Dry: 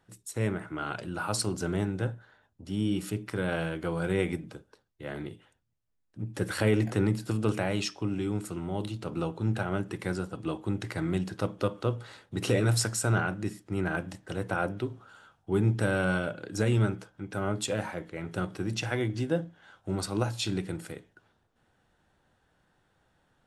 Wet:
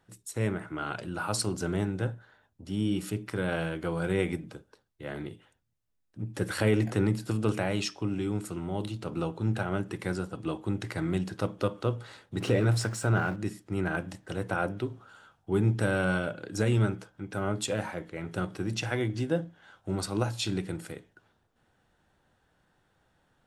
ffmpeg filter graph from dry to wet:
ffmpeg -i in.wav -filter_complex "[0:a]asettb=1/sr,asplit=3[link_01][link_02][link_03];[link_01]atrim=end=12.404[link_04];[link_02]atrim=start=12.4:end=13.36,asetpts=PTS-STARTPTS,afade=type=in:duration=0.004:curve=qsin,afade=type=out:start_time=0.956:duration=0.004:curve=qsin,aeval=exprs='val(0)+0.5*0.0106*sgn(val(0))':channel_layout=same,highshelf=frequency=4600:gain=-11[link_05];[link_03]atrim=start=13.356[link_06];[link_04][link_05]acrossfade=duration=0.004:curve1=hsin:curve2=qsin[link_07];[link_07][link_06]acrossfade=duration=0.004:curve1=qsin:curve2=hsin" out.wav

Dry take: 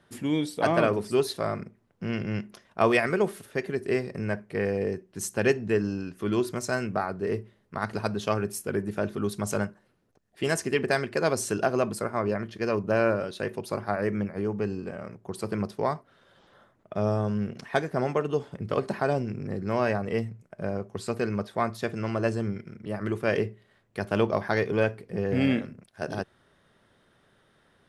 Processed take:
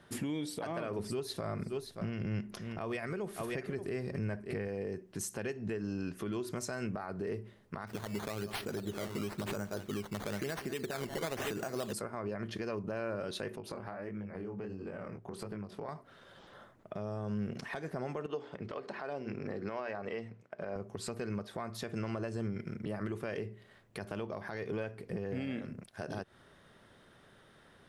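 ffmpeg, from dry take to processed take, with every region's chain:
ffmpeg -i in.wav -filter_complex "[0:a]asettb=1/sr,asplit=3[link_01][link_02][link_03];[link_01]atrim=end=0.994[link_04];[link_02]atrim=start=0.99:end=4.68,asetpts=PTS-STARTPTS,afade=type=in:duration=0.004:curve=qsin,afade=type=out:start_time=3.686:duration=0.004:curve=qsin,lowshelf=frequency=120:gain=10,aecho=1:1:576:0.126,atrim=end_sample=162729[link_05];[link_03]atrim=start=4.676[link_06];[link_04][link_05]acrossfade=duration=0.004:curve1=hsin:curve2=qsin[link_07];[link_07][link_06]acrossfade=duration=0.004:curve1=qsin:curve2=hsin,asettb=1/sr,asplit=3[link_08][link_09][link_10];[link_08]atrim=end=7.874[link_11];[link_09]atrim=start=7.87:end=11.93,asetpts=PTS-STARTPTS,afade=type=in:duration=0.004:curve=qsin,afade=type=out:start_time=4.056:duration=0.004:curve=qsin,aecho=1:1:182|731:0.106|0.335,atrim=end_sample=179046,acrusher=samples=12:mix=1:aa=0.000001:lfo=1:lforange=12:lforate=1[link_12];[link_10]atrim=start=11.926[link_13];[link_11][link_12]acrossfade=duration=0.004:curve1=hsin:curve2=qsin[link_14];[link_14][link_13]acrossfade=duration=0.004:curve1=qsin:curve2=hsin,asettb=1/sr,asplit=3[link_15][link_16][link_17];[link_15]atrim=end=13.564[link_18];[link_16]atrim=start=13.56:end=15.89,asetpts=PTS-STARTPTS,afade=type=in:duration=0.004:curve=qsin,afade=type=out:start_time=2.326:duration=0.004:curve=qsin,bass=frequency=250:gain=0,treble=frequency=4000:gain=-7,flanger=delay=18.5:depth=7.4:speed=1.5,acompressor=threshold=-41dB:ratio=8:attack=3.2:release=140:knee=1:detection=peak[link_19];[link_17]atrim=start=15.886[link_20];[link_18][link_19]acrossfade=duration=0.004:curve1=hsin:curve2=qsin[link_21];[link_21][link_20]acrossfade=duration=0.004:curve1=qsin:curve2=hsin,asettb=1/sr,asplit=3[link_22][link_23][link_24];[link_22]atrim=end=18.264[link_25];[link_23]atrim=start=18.26:end=20.76,asetpts=PTS-STARTPTS,afade=type=in:duration=0.004:curve=qsin,afade=type=out:start_time=2.496:duration=0.004:curve=qsin,highpass=110,lowpass=4300,equalizer=frequency=140:width_type=o:width=2:gain=-11,bandreject=frequency=60:width_type=h:width=6,bandreject=frequency=120:width_type=h:width=6,bandreject=frequency=180:width_type=h:width=6,bandreject=frequency=240:width_type=h:width=6,bandreject=frequency=300:width_type=h:width=6,bandreject=frequency=360:width_type=h:width=6,bandreject=frequency=420:width_type=h:width=6,bandreject=frequency=480:width_type=h:width=6[link_26];[link_24]atrim=start=20.756[link_27];[link_25][link_26]acrossfade=duration=0.004:curve1=hsin:curve2=qsin[link_28];[link_28][link_27]acrossfade=duration=0.004:curve1=qsin:curve2=hsin,acompressor=threshold=-32dB:ratio=6,alimiter=level_in=7dB:limit=-24dB:level=0:latency=1:release=143,volume=-7dB,volume=3dB" out.wav

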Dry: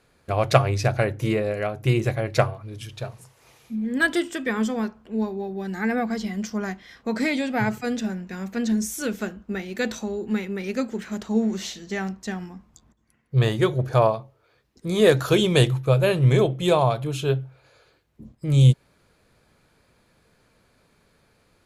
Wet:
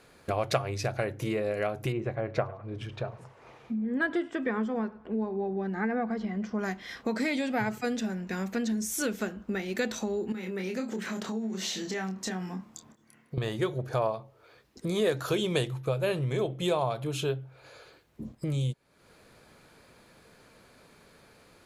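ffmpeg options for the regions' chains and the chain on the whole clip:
ffmpeg -i in.wav -filter_complex "[0:a]asettb=1/sr,asplit=3[link_01][link_02][link_03];[link_01]atrim=end=1.924[link_04];[link_02]atrim=start=1.92:end=6.59,asetpts=PTS-STARTPTS,afade=type=in:duration=0.004:curve=qsin,afade=type=out:start_time=4.666:duration=0.004:curve=qsin,lowpass=1400,aemphasis=mode=production:type=75kf,aecho=1:1:103|206:0.0708|0.0212,atrim=end_sample=205947[link_05];[link_03]atrim=start=6.586[link_06];[link_04][link_05]acrossfade=duration=0.004:curve1=hsin:curve2=qsin[link_07];[link_07][link_06]acrossfade=duration=0.004:curve1=qsin:curve2=hsin,asettb=1/sr,asplit=3[link_08][link_09][link_10];[link_08]atrim=end=10.324[link_11];[link_09]atrim=start=10.32:end=13.38,asetpts=PTS-STARTPTS,afade=type=in:duration=0.004:curve=qsin,afade=type=out:start_time=3.056:duration=0.004:curve=qsin,highpass=97,acompressor=threshold=-36dB:ratio=3:attack=3.2:release=140:knee=1:detection=peak,asplit=2[link_12][link_13];[link_13]adelay=27,volume=-5dB[link_14];[link_12][link_14]amix=inputs=2:normalize=0,atrim=end_sample=134946[link_15];[link_10]atrim=start=13.376[link_16];[link_11][link_15]acrossfade=duration=0.004:curve1=hsin:curve2=qsin[link_17];[link_17][link_16]acrossfade=duration=0.004:curve1=qsin:curve2=hsin,lowshelf=frequency=470:gain=4,acompressor=threshold=-33dB:ratio=3,lowshelf=frequency=180:gain=-11,volume=5.5dB" out.wav

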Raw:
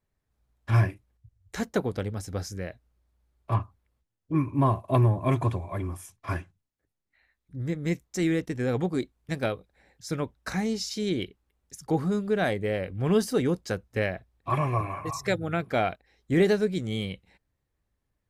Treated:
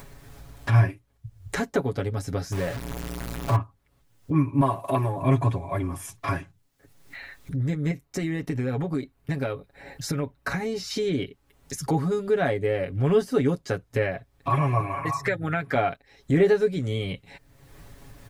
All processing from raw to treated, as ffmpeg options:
ffmpeg -i in.wav -filter_complex "[0:a]asettb=1/sr,asplit=3[link_01][link_02][link_03];[link_01]atrim=end=2.524[link_04];[link_02]atrim=start=2.52:end=3.56,asetpts=PTS-STARTPTS,afade=type=in:duration=0.004:curve=qsin,afade=type=out:start_time=1.036:duration=0.004:curve=qsin,aeval=exprs='val(0)+0.5*0.0224*sgn(val(0))':channel_layout=same,acrusher=bits=3:mode=log:mix=0:aa=0.000001[link_05];[link_03]atrim=start=3.556[link_06];[link_04][link_05]acrossfade=duration=0.004:curve1=hsin:curve2=qsin[link_07];[link_07][link_06]acrossfade=duration=0.004:curve1=qsin:curve2=hsin,asettb=1/sr,asplit=3[link_08][link_09][link_10];[link_08]atrim=end=4.614[link_11];[link_09]atrim=start=4.61:end=5.22,asetpts=PTS-STARTPTS,afade=type=in:duration=0.004:curve=qsin,afade=type=out:start_time=0.606:duration=0.004:curve=qsin,highshelf=frequency=6300:gain=6,acompressor=mode=upward:threshold=-23dB:ratio=2.5:attack=3.2:release=140:knee=2.83:detection=peak,highpass=frequency=360:poles=1[link_12];[link_10]atrim=start=5.216[link_13];[link_11][link_12]acrossfade=duration=0.004:curve1=hsin:curve2=qsin[link_14];[link_14][link_13]acrossfade=duration=0.004:curve1=qsin:curve2=hsin,asettb=1/sr,asplit=3[link_15][link_16][link_17];[link_15]atrim=end=7.914[link_18];[link_16]atrim=start=7.91:end=10.91,asetpts=PTS-STARTPTS,afade=type=in:duration=0.004:curve=qsin,afade=type=out:start_time=2.996:duration=0.004:curve=qsin,equalizer=frequency=6800:width_type=o:width=1.4:gain=-6.5,bandreject=frequency=3400:width=14,acompressor=threshold=-29dB:ratio=4:attack=3.2:release=140:knee=1:detection=peak[link_19];[link_17]atrim=start=10.906[link_20];[link_18][link_19]acrossfade=duration=0.004:curve1=hsin:curve2=qsin[link_21];[link_21][link_20]acrossfade=duration=0.004:curve1=qsin:curve2=hsin,asettb=1/sr,asplit=3[link_22][link_23][link_24];[link_22]atrim=end=15.024[link_25];[link_23]atrim=start=15.02:end=15.75,asetpts=PTS-STARTPTS,afade=type=in:duration=0.004:curve=qsin,afade=type=out:start_time=0.726:duration=0.004:curve=qsin,equalizer=frequency=1800:width=2.2:gain=9,acrossover=split=89|2200[link_26][link_27][link_28];[link_26]acompressor=threshold=-54dB:ratio=4[link_29];[link_27]acompressor=threshold=-26dB:ratio=4[link_30];[link_28]acompressor=threshold=-35dB:ratio=4[link_31];[link_29][link_30][link_31]amix=inputs=3:normalize=0[link_32];[link_24]atrim=start=15.746[link_33];[link_25][link_32]acrossfade=duration=0.004:curve1=hsin:curve2=qsin[link_34];[link_34][link_33]acrossfade=duration=0.004:curve1=qsin:curve2=hsin,acrossover=split=2600[link_35][link_36];[link_36]acompressor=threshold=-45dB:ratio=4:attack=1:release=60[link_37];[link_35][link_37]amix=inputs=2:normalize=0,aecho=1:1:7.2:0.72,acompressor=mode=upward:threshold=-21dB:ratio=2.5" out.wav

